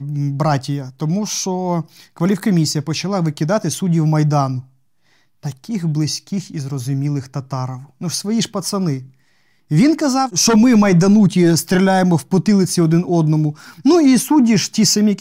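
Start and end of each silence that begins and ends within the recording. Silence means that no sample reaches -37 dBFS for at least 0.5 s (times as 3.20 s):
4.64–5.43 s
9.08–9.71 s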